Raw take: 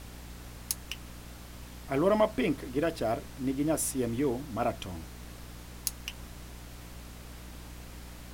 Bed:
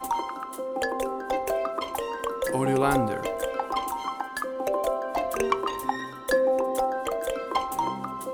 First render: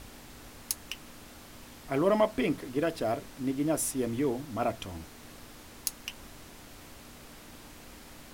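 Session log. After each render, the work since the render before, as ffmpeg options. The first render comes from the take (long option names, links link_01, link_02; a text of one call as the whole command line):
ffmpeg -i in.wav -af "bandreject=frequency=60:width_type=h:width=6,bandreject=frequency=120:width_type=h:width=6,bandreject=frequency=180:width_type=h:width=6" out.wav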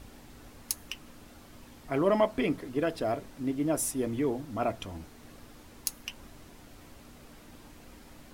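ffmpeg -i in.wav -af "afftdn=noise_reduction=6:noise_floor=-50" out.wav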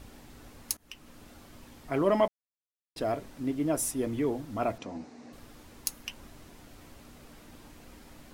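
ffmpeg -i in.wav -filter_complex "[0:a]asettb=1/sr,asplit=3[link_01][link_02][link_03];[link_01]atrim=end=4.784[link_04];[link_02]atrim=start=4.78:end=5.33,asetpts=PTS-STARTPTS,afade=type=in:duration=0.004:curve=qsin,afade=type=out:start_time=0.546:duration=0.004:curve=qsin,highpass=170,equalizer=frequency=250:width_type=q:width=4:gain=9,equalizer=frequency=500:width_type=q:width=4:gain=5,equalizer=frequency=760:width_type=q:width=4:gain=5,equalizer=frequency=1400:width_type=q:width=4:gain=-4,equalizer=frequency=3200:width_type=q:width=4:gain=-9,lowpass=frequency=6800:width=0.5412,lowpass=frequency=6800:width=1.3066[link_05];[link_03]atrim=start=5.326[link_06];[link_04][link_05]acrossfade=duration=0.004:curve1=hsin:curve2=qsin[link_07];[link_07][link_06]acrossfade=duration=0.004:curve1=qsin:curve2=hsin,asplit=4[link_08][link_09][link_10][link_11];[link_08]atrim=end=0.77,asetpts=PTS-STARTPTS,afade=type=out:start_time=0.766:duration=0.004:curve=hsin:silence=0.0630957[link_12];[link_09]atrim=start=0.77:end=2.28,asetpts=PTS-STARTPTS,afade=type=in:duration=0.55:curve=qsin:silence=0.0630957,afade=type=out:start_time=1.506:duration=0.004:curve=hsin[link_13];[link_10]atrim=start=2.28:end=2.96,asetpts=PTS-STARTPTS,volume=0[link_14];[link_11]atrim=start=2.96,asetpts=PTS-STARTPTS,afade=type=in:duration=0.004:curve=hsin[link_15];[link_12][link_13][link_14][link_15]concat=n=4:v=0:a=1" out.wav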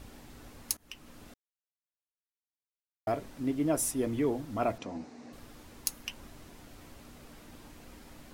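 ffmpeg -i in.wav -filter_complex "[0:a]asplit=3[link_01][link_02][link_03];[link_01]atrim=end=1.34,asetpts=PTS-STARTPTS,afade=type=out:start_time=1.336:duration=0.004:curve=hsin[link_04];[link_02]atrim=start=1.34:end=3.07,asetpts=PTS-STARTPTS,volume=0[link_05];[link_03]atrim=start=3.07,asetpts=PTS-STARTPTS,afade=type=in:duration=0.004:curve=hsin[link_06];[link_04][link_05][link_06]concat=n=3:v=0:a=1" out.wav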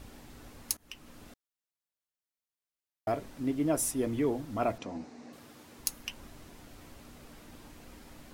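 ffmpeg -i in.wav -filter_complex "[0:a]asettb=1/sr,asplit=3[link_01][link_02][link_03];[link_01]atrim=end=5.244[link_04];[link_02]atrim=start=5.24:end=5.79,asetpts=PTS-STARTPTS,afade=type=in:duration=0.004:curve=qsin,afade=type=out:start_time=0.546:duration=0.004:curve=qsin,highpass=130[link_05];[link_03]atrim=start=5.786[link_06];[link_04][link_05]acrossfade=duration=0.004:curve1=hsin:curve2=qsin[link_07];[link_07][link_06]acrossfade=duration=0.004:curve1=qsin:curve2=hsin" out.wav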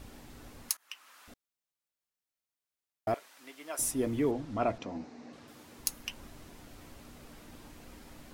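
ffmpeg -i in.wav -filter_complex "[0:a]asettb=1/sr,asplit=3[link_01][link_02][link_03];[link_01]atrim=end=0.694[link_04];[link_02]atrim=start=0.69:end=1.28,asetpts=PTS-STARTPTS,afade=type=in:duration=0.004:curve=qsin,afade=type=out:start_time=0.586:duration=0.004:curve=qsin,highpass=frequency=1200:width_type=q:width=1.5[link_05];[link_03]atrim=start=1.276[link_06];[link_04][link_05]acrossfade=duration=0.004:curve1=hsin:curve2=qsin[link_07];[link_07][link_06]acrossfade=duration=0.004:curve1=qsin:curve2=hsin,asettb=1/sr,asplit=3[link_08][link_09][link_10];[link_08]atrim=end=3.144[link_11];[link_09]atrim=start=3.14:end=3.79,asetpts=PTS-STARTPTS,afade=type=in:duration=0.004:curve=qsin,afade=type=out:start_time=0.646:duration=0.004:curve=qsin,highpass=1100[link_12];[link_10]atrim=start=3.786[link_13];[link_11][link_12]acrossfade=duration=0.004:curve1=hsin:curve2=qsin[link_14];[link_14][link_13]acrossfade=duration=0.004:curve1=qsin:curve2=hsin,asettb=1/sr,asplit=3[link_15][link_16][link_17];[link_15]atrim=end=4.314[link_18];[link_16]atrim=start=4.31:end=5.48,asetpts=PTS-STARTPTS,afade=type=in:duration=0.004:curve=qsin,afade=type=out:start_time=1.166:duration=0.004:curve=qsin,lowpass=6300[link_19];[link_17]atrim=start=5.476[link_20];[link_18][link_19]acrossfade=duration=0.004:curve1=hsin:curve2=qsin[link_21];[link_21][link_20]acrossfade=duration=0.004:curve1=qsin:curve2=hsin" out.wav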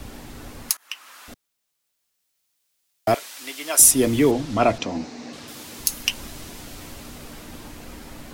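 ffmpeg -i in.wav -filter_complex "[0:a]acrossover=split=140|630|2600[link_01][link_02][link_03][link_04];[link_04]dynaudnorm=framelen=320:gausssize=13:maxgain=11dB[link_05];[link_01][link_02][link_03][link_05]amix=inputs=4:normalize=0,alimiter=level_in=11.5dB:limit=-1dB:release=50:level=0:latency=1" out.wav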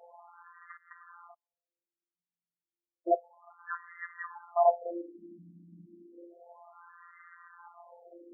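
ffmpeg -i in.wav -af "afftfilt=real='hypot(re,im)*cos(PI*b)':imag='0':win_size=1024:overlap=0.75,afftfilt=real='re*between(b*sr/1024,220*pow(1500/220,0.5+0.5*sin(2*PI*0.31*pts/sr))/1.41,220*pow(1500/220,0.5+0.5*sin(2*PI*0.31*pts/sr))*1.41)':imag='im*between(b*sr/1024,220*pow(1500/220,0.5+0.5*sin(2*PI*0.31*pts/sr))/1.41,220*pow(1500/220,0.5+0.5*sin(2*PI*0.31*pts/sr))*1.41)':win_size=1024:overlap=0.75" out.wav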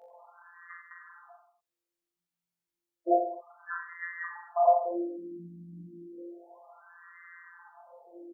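ffmpeg -i in.wav -filter_complex "[0:a]asplit=2[link_01][link_02];[link_02]adelay=17,volume=-2.5dB[link_03];[link_01][link_03]amix=inputs=2:normalize=0,aecho=1:1:40|84|132.4|185.6|244.2:0.631|0.398|0.251|0.158|0.1" out.wav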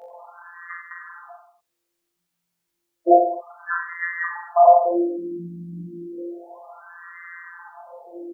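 ffmpeg -i in.wav -af "volume=11.5dB,alimiter=limit=-3dB:level=0:latency=1" out.wav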